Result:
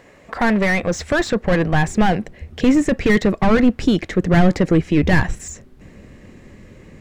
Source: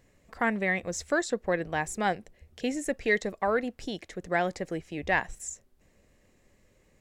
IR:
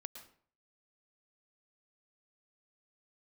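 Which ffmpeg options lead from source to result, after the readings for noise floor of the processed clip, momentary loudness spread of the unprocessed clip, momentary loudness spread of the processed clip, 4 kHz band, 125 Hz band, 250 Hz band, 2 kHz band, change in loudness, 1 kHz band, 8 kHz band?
-47 dBFS, 11 LU, 8 LU, +11.5 dB, +21.0 dB, +18.0 dB, +8.0 dB, +12.5 dB, +8.5 dB, +5.5 dB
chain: -filter_complex "[0:a]acrossover=split=7400[a][b];[b]acompressor=threshold=-52dB:ratio=4:attack=1:release=60[c];[a][c]amix=inputs=2:normalize=0,asplit=2[d][e];[e]highpass=f=720:p=1,volume=26dB,asoftclip=type=tanh:threshold=-12.5dB[f];[d][f]amix=inputs=2:normalize=0,lowpass=f=1.3k:p=1,volume=-6dB,asubboost=boost=7.5:cutoff=230,volume=5dB"

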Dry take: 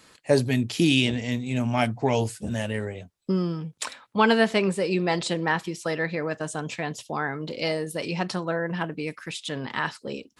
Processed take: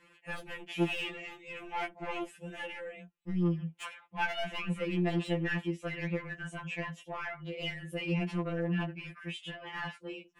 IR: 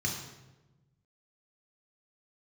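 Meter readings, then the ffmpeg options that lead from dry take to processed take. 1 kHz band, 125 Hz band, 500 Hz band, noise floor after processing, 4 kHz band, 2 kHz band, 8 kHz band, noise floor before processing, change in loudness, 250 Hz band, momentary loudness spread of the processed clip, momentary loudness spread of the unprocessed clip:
-11.0 dB, -7.5 dB, -12.5 dB, -63 dBFS, -11.0 dB, -8.5 dB, -18.5 dB, -61 dBFS, -10.0 dB, -9.0 dB, 11 LU, 11 LU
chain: -af "volume=22dB,asoftclip=hard,volume=-22dB,areverse,acompressor=mode=upward:threshold=-49dB:ratio=2.5,areverse,highshelf=f=3.5k:t=q:w=3:g=-8.5,asoftclip=type=tanh:threshold=-16.5dB,afftfilt=real='re*2.83*eq(mod(b,8),0)':imag='im*2.83*eq(mod(b,8),0)':win_size=2048:overlap=0.75,volume=-5.5dB"

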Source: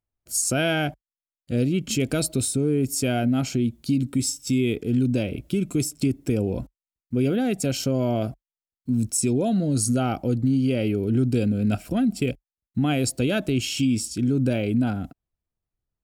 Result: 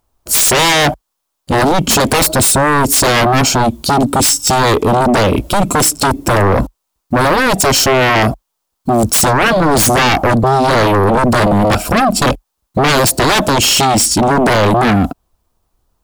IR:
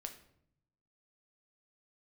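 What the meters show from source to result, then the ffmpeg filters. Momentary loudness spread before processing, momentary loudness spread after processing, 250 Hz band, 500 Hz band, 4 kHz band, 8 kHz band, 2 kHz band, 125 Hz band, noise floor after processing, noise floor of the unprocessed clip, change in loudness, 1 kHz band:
6 LU, 6 LU, +7.0 dB, +14.0 dB, +18.0 dB, +15.0 dB, +19.0 dB, +8.5 dB, -73 dBFS, under -85 dBFS, +12.5 dB, +24.0 dB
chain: -af "equalizer=f=125:t=o:w=1:g=-7,equalizer=f=1k:t=o:w=1:g=8,equalizer=f=2k:t=o:w=1:g=-7,aeval=exprs='0.266*sin(PI/2*5.62*val(0)/0.266)':c=same,aeval=exprs='0.266*(cos(1*acos(clip(val(0)/0.266,-1,1)))-cos(1*PI/2))+0.00531*(cos(4*acos(clip(val(0)/0.266,-1,1)))-cos(4*PI/2))':c=same,volume=4dB"

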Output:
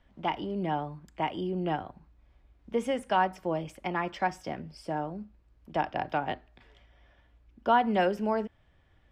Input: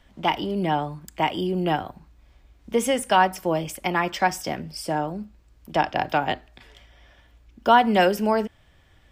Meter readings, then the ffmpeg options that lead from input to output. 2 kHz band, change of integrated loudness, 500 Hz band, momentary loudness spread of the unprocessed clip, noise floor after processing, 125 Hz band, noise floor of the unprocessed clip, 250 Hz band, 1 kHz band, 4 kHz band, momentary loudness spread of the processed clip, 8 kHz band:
-9.0 dB, -7.5 dB, -7.0 dB, 13 LU, -64 dBFS, -6.5 dB, -57 dBFS, -6.5 dB, -7.5 dB, -11.5 dB, 13 LU, -19.0 dB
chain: -af "aemphasis=mode=reproduction:type=75fm,volume=-7.5dB"

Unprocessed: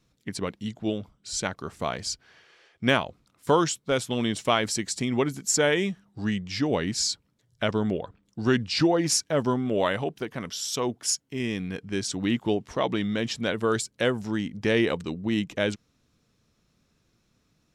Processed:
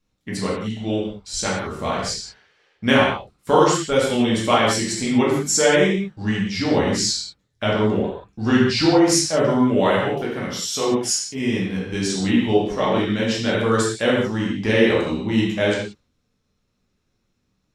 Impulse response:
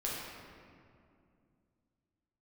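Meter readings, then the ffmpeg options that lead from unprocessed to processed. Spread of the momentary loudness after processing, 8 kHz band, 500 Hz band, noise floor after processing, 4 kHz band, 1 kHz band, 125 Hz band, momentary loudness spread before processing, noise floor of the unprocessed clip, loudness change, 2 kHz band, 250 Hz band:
10 LU, +5.0 dB, +7.5 dB, -71 dBFS, +6.0 dB, +7.5 dB, +6.5 dB, 10 LU, -70 dBFS, +7.0 dB, +6.5 dB, +7.5 dB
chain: -filter_complex "[0:a]agate=range=-10dB:threshold=-51dB:ratio=16:detection=peak[a];[1:a]atrim=start_sample=2205,afade=t=out:st=0.38:d=0.01,atrim=end_sample=17199,asetrate=74970,aresample=44100[b];[a][b]afir=irnorm=-1:irlink=0,volume=7.5dB"

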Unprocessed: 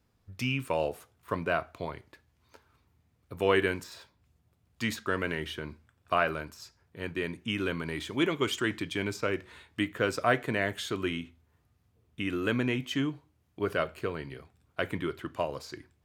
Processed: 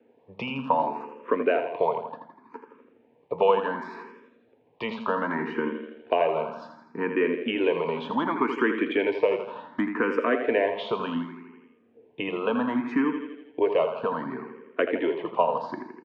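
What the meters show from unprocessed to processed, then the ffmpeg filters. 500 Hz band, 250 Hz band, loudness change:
+7.0 dB, +5.0 dB, +5.0 dB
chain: -filter_complex "[0:a]highpass=f=190:w=0.5412,highpass=f=190:w=1.3066,equalizer=f=240:t=q:w=4:g=9,equalizer=f=460:t=q:w=4:g=10,equalizer=f=930:t=q:w=4:g=9,equalizer=f=1.4k:t=q:w=4:g=-7,equalizer=f=2k:t=q:w=4:g=-6,lowpass=f=2.4k:w=0.5412,lowpass=f=2.4k:w=1.3066,acrossover=split=680|1600[a][b][c];[a]acompressor=threshold=-38dB:ratio=4[d];[b]acompressor=threshold=-39dB:ratio=4[e];[c]acompressor=threshold=-43dB:ratio=4[f];[d][e][f]amix=inputs=3:normalize=0,aemphasis=mode=production:type=75kf,aecho=1:1:82|164|246|328|410|492|574:0.376|0.218|0.126|0.0733|0.0425|0.0247|0.0143,acrossover=split=1700[g][h];[g]acontrast=72[i];[i][h]amix=inputs=2:normalize=0,asplit=2[j][k];[k]afreqshift=0.67[l];[j][l]amix=inputs=2:normalize=1,volume=7dB"

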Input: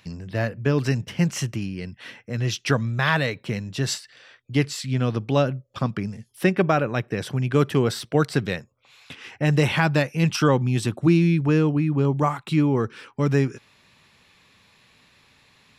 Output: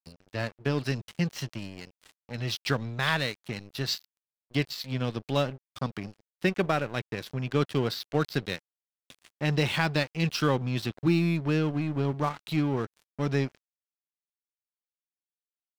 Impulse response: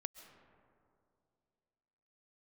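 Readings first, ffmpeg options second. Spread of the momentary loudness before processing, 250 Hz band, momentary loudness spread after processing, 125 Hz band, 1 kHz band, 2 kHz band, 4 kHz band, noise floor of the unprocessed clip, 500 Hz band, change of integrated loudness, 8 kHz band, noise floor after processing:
11 LU, -7.0 dB, 11 LU, -7.5 dB, -6.0 dB, -5.0 dB, -1.5 dB, -60 dBFS, -7.0 dB, -6.5 dB, -9.0 dB, under -85 dBFS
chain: -af "lowpass=f=4.4k:t=q:w=2.8,aeval=exprs='sgn(val(0))*max(abs(val(0))-0.0251,0)':c=same,volume=-5.5dB"

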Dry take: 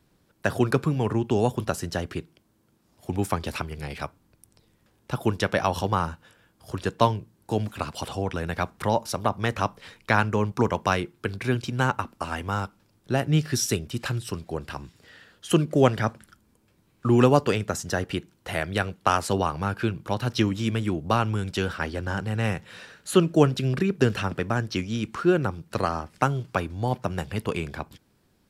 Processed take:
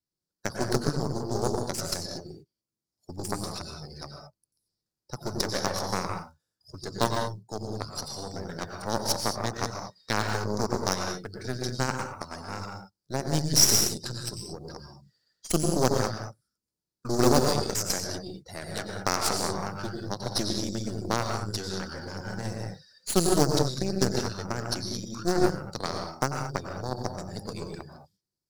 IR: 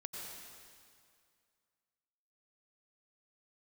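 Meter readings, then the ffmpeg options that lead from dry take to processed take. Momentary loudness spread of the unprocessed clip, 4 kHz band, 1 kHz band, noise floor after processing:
11 LU, +4.0 dB, -5.0 dB, under -85 dBFS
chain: -filter_complex "[0:a]acrusher=bits=5:mode=log:mix=0:aa=0.000001,highshelf=f=3.7k:t=q:w=3:g=9[a];[1:a]atrim=start_sample=2205,afade=t=out:st=0.29:d=0.01,atrim=end_sample=13230[b];[a][b]afir=irnorm=-1:irlink=0,afftdn=nr=21:nf=-39,aeval=exprs='0.596*(cos(1*acos(clip(val(0)/0.596,-1,1)))-cos(1*PI/2))+0.0376*(cos(7*acos(clip(val(0)/0.596,-1,1)))-cos(7*PI/2))+0.0596*(cos(8*acos(clip(val(0)/0.596,-1,1)))-cos(8*PI/2))':c=same"

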